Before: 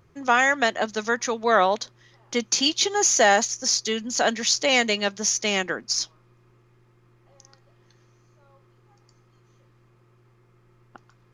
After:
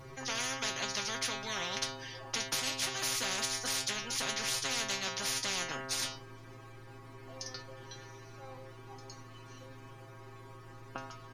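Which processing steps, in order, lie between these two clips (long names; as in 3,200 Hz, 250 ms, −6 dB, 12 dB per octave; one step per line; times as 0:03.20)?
pitch shifter −1 semitone
stiff-string resonator 130 Hz, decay 0.39 s, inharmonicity 0.002
every bin compressed towards the loudest bin 10 to 1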